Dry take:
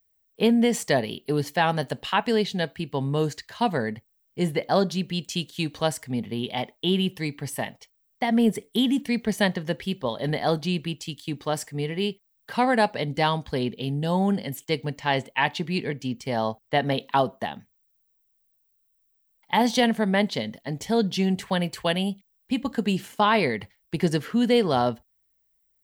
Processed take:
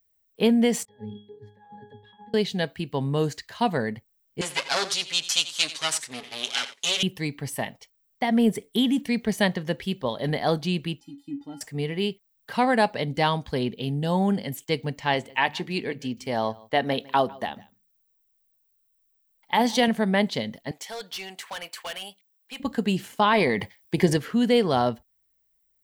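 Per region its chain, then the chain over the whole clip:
0.85–2.34 block floating point 7-bit + negative-ratio compressor -28 dBFS, ratio -0.5 + octave resonator G#, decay 0.41 s
4.41–7.03 minimum comb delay 7.3 ms + weighting filter ITU-R 468 + echo 88 ms -14.5 dB
11–11.61 G.711 law mismatch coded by mu + tilt shelf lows +8.5 dB, about 910 Hz + resonator 280 Hz, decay 0.16 s, harmonics odd, mix 100%
15.14–19.88 bell 150 Hz -6.5 dB 0.66 oct + notches 50/100/150/200 Hz + echo 0.154 s -23 dB
20.71–22.6 HPF 860 Hz + overloaded stage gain 30.5 dB
23.33–24.17 notch comb 1400 Hz + transient shaper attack +5 dB, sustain +9 dB
whole clip: dry

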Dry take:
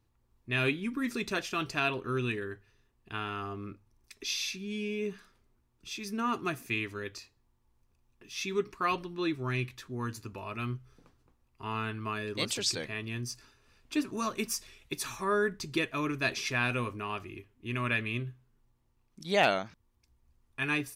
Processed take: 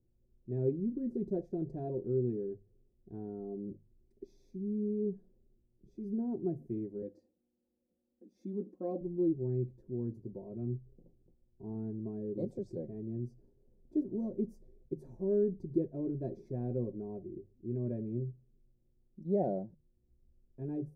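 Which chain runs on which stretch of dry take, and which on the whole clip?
7.02–9.01 HPF 230 Hz + comb 3.8 ms, depth 90%
whole clip: inverse Chebyshev low-pass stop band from 1100 Hz, stop band 40 dB; notches 50/100/150 Hz; comb 5.5 ms, depth 47%

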